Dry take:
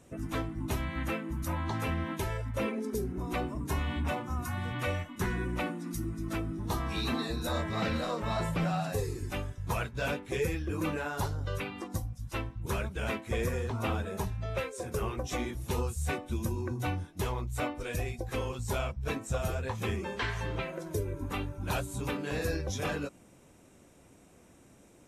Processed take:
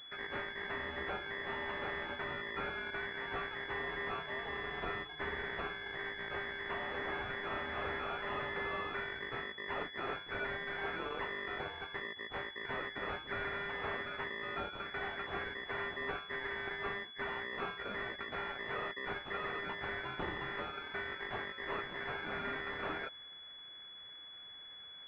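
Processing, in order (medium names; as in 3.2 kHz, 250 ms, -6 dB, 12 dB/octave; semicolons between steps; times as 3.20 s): saturation -32 dBFS, distortion -11 dB; ring modulator 1.9 kHz; class-D stage that switches slowly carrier 3.4 kHz; trim +4.5 dB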